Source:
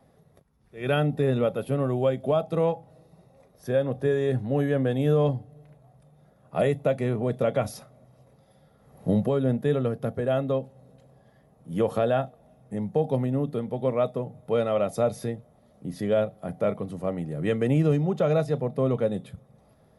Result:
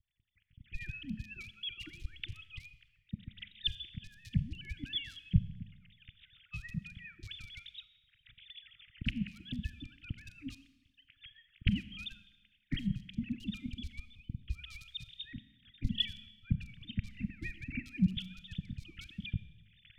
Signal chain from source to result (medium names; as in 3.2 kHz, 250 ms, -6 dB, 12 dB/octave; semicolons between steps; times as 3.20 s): formants replaced by sine waves; recorder AGC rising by 42 dB/s; level-controlled noise filter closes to 1.3 kHz, open at -17 dBFS; inverse Chebyshev band-stop 410–1000 Hz, stop band 80 dB; bass shelf 190 Hz +6.5 dB; in parallel at +2 dB: compression, threshold -58 dBFS, peak gain reduction 23.5 dB; on the sum: harmonic-percussive split harmonic -17 dB; rotary cabinet horn 7 Hz, later 0.9 Hz, at 11.38 s; Schroeder reverb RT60 1.1 s, combs from 29 ms, DRR 14 dB; trim +15.5 dB